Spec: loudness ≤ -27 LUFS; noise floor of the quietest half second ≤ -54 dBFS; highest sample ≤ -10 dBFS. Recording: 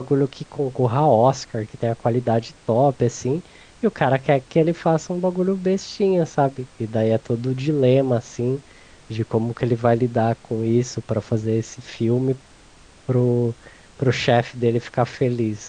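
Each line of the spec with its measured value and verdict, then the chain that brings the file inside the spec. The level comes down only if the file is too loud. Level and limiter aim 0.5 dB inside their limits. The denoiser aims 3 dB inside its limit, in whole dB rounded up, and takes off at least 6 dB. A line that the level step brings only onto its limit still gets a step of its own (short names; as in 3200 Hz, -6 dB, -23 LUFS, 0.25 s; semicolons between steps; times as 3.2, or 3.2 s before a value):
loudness -21.5 LUFS: fail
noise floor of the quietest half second -48 dBFS: fail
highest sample -3.5 dBFS: fail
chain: denoiser 6 dB, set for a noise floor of -48 dBFS; gain -6 dB; limiter -10.5 dBFS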